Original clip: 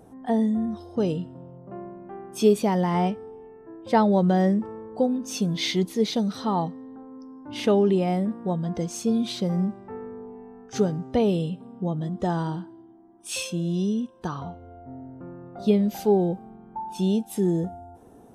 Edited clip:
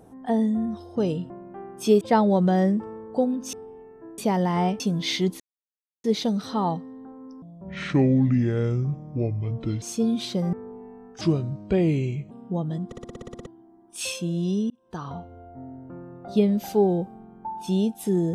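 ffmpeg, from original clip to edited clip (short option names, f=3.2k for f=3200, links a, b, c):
-filter_complex "[0:a]asplit=23[a][b][c][d][e][f][g][h][i][j][k][l][m][n][o][p][q][r][s][t][u][v][w];[a]atrim=end=1.302[x];[b]atrim=start=1.848:end=2.562[y];[c]atrim=start=3.828:end=5.352[z];[d]atrim=start=3.178:end=3.832[aa];[e]atrim=start=2.558:end=3.182[ab];[f]atrim=start=5.348:end=5.95,asetpts=PTS-STARTPTS,afade=t=out:st=0.598:d=0.004:c=hsin,apad=pad_dur=0.64[ac];[g]atrim=start=5.95:end=7.334,asetpts=PTS-STARTPTS,afade=t=in:d=0.004:c=hsin[ad];[h]atrim=start=7.33:end=8.89,asetpts=PTS-STARTPTS,asetrate=28665,aresample=44100[ae];[i]atrim=start=8.886:end=9.602[af];[j]atrim=start=10.068:end=10.754[ag];[k]atrim=start=10.75:end=11.62,asetpts=PTS-STARTPTS,asetrate=34839,aresample=44100[ah];[l]atrim=start=11.616:end=12.232[ai];[m]atrim=start=12.168:end=12.232[aj];[n]atrim=start=12.168:end=12.232[ak];[o]atrim=start=12.168:end=12.232[al];[p]atrim=start=12.168:end=12.232[am];[q]atrim=start=12.168:end=12.232[an];[r]atrim=start=12.168:end=12.232[ao];[s]atrim=start=12.168:end=12.232[ap];[t]atrim=start=12.168:end=12.232[aq];[u]atrim=start=12.168:end=12.232[ar];[v]atrim=start=12.768:end=14.01,asetpts=PTS-STARTPTS,afade=t=out:st=1.238:d=0.004:c=hsin[as];[w]atrim=start=14.01,asetpts=PTS-STARTPTS,afade=t=in:d=0.43[at];[x][y]acrossfade=d=0.004:c1=hsin:c2=hsin[au];[au][z]acrossfade=d=0.004:c1=hsin:c2=hsin[av];[av][aa]acrossfade=d=0.004:c1=hsin:c2=hsin[aw];[aw][ab]acrossfade=d=0.004:c1=hsin:c2=hsin[ax];[ac][ad]concat=n=2:v=0:a=1[ay];[ax][ay]acrossfade=d=0.004:c1=hsin:c2=hsin[az];[az][ae]acrossfade=d=0.004:c1=hsin:c2=hsin[ba];[ba][af]acrossfade=d=0.004:c1=hsin:c2=hsin[bb];[bb][ag]acrossfade=d=0.004:c1=hsin:c2=hsin[bc];[bc][ah]acrossfade=d=0.004:c1=hsin:c2=hsin[bd];[bd][ai]acrossfade=d=0.004:c1=hsin:c2=hsin[be];[be][aj]acrossfade=d=0.004:c1=hsin:c2=hsin[bf];[bf][ak]acrossfade=d=0.004:c1=hsin:c2=hsin[bg];[bg][al]acrossfade=d=0.004:c1=hsin:c2=hsin[bh];[bh][am]acrossfade=d=0.004:c1=hsin:c2=hsin[bi];[bi][an]acrossfade=d=0.004:c1=hsin:c2=hsin[bj];[bj][ao]acrossfade=d=0.004:c1=hsin:c2=hsin[bk];[bk][ap]acrossfade=d=0.004:c1=hsin:c2=hsin[bl];[bl][aq]acrossfade=d=0.004:c1=hsin:c2=hsin[bm];[bm][ar]acrossfade=d=0.004:c1=hsin:c2=hsin[bn];[as][at]concat=n=2:v=0:a=1[bo];[bn][bo]acrossfade=d=0.004:c1=hsin:c2=hsin"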